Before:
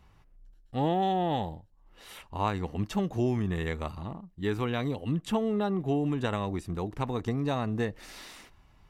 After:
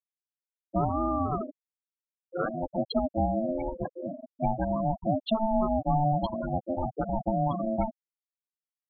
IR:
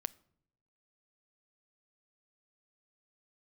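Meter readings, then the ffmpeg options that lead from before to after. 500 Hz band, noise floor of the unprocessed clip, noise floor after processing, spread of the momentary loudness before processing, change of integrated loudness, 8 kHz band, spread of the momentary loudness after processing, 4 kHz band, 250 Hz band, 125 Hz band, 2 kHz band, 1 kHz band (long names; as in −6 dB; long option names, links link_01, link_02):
+2.0 dB, −60 dBFS, below −85 dBFS, 14 LU, +1.0 dB, below −30 dB, 8 LU, −2.5 dB, 0.0 dB, −1.0 dB, −7.5 dB, +3.5 dB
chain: -filter_complex "[0:a]equalizer=frequency=650:width_type=o:width=1.9:gain=-2.5,acompressor=threshold=-30dB:ratio=8,asplit=2[link_01][link_02];[link_02]equalizer=frequency=125:width_type=o:width=1:gain=-6,equalizer=frequency=250:width_type=o:width=1:gain=5,equalizer=frequency=4000:width_type=o:width=1:gain=9,equalizer=frequency=8000:width_type=o:width=1:gain=-4[link_03];[1:a]atrim=start_sample=2205[link_04];[link_03][link_04]afir=irnorm=-1:irlink=0,volume=16.5dB[link_05];[link_01][link_05]amix=inputs=2:normalize=0,aeval=exprs='val(0)*sin(2*PI*440*n/s)':channel_layout=same,afftfilt=real='re*gte(hypot(re,im),0.282)':imag='im*gte(hypot(re,im),0.282)':win_size=1024:overlap=0.75,volume=-6.5dB"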